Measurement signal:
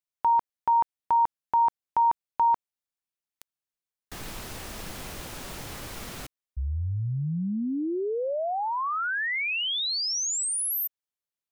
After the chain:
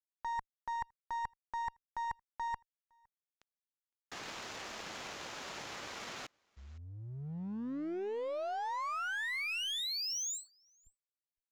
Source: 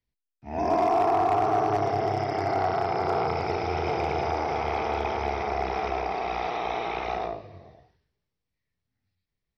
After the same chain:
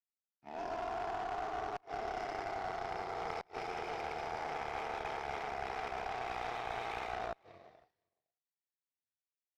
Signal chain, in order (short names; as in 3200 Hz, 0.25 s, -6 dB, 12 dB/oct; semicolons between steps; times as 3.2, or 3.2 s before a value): HPF 750 Hz 6 dB/oct; high shelf 3600 Hz -6 dB; reverse; compressor 16:1, threshold -36 dBFS; reverse; flipped gate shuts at -28 dBFS, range -30 dB; one-sided clip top -40 dBFS; downsampling 16000 Hz; on a send: echo 0.511 s -23 dB; on the sum: power-law curve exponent 1.4; gain +5.5 dB